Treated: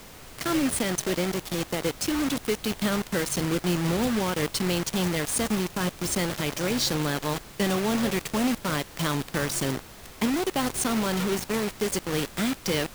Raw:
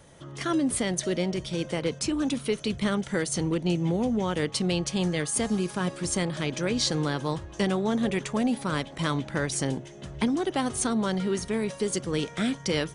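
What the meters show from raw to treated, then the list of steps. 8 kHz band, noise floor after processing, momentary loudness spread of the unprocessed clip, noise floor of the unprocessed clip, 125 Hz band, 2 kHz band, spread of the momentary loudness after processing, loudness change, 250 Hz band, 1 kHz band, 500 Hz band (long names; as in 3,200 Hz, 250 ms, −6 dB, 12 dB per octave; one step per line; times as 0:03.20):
+2.0 dB, −46 dBFS, 4 LU, −45 dBFS, −0.5 dB, +2.5 dB, 4 LU, +1.0 dB, 0.0 dB, +2.0 dB, 0.0 dB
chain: bit reduction 5 bits
background noise pink −45 dBFS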